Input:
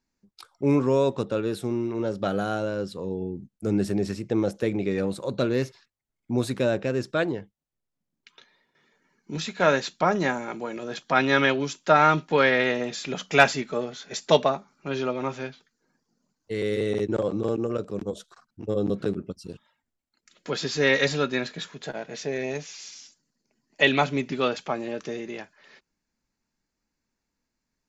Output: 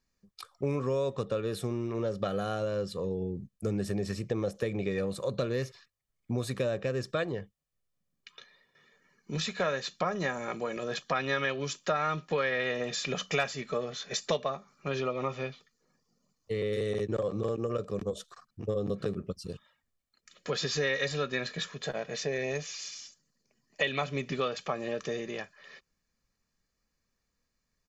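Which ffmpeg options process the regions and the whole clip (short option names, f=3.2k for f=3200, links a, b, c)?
-filter_complex "[0:a]asettb=1/sr,asplit=3[a][b][c];[a]atrim=end=15.004[d];[b]atrim=start=15:end=16.73,asetpts=PTS-STARTPTS,afade=t=in:d=0.004:c=qsin,afade=t=out:st=1.726:d=0.004:c=qsin,bandreject=f=1.6k:w=6.3,acrossover=split=3700[e][f];[f]acompressor=threshold=-57dB:ratio=4:attack=1:release=60[g];[e][g]amix=inputs=2:normalize=0[h];[c]atrim=start=16.726[i];[d][h]acrossfade=d=0.004:c1=hsin:c2=qsin[j];[j][i]acrossfade=d=0.004:c1=qsin:c2=hsin,equalizer=f=650:t=o:w=0.29:g=-5,aecho=1:1:1.7:0.52,acompressor=threshold=-28dB:ratio=4"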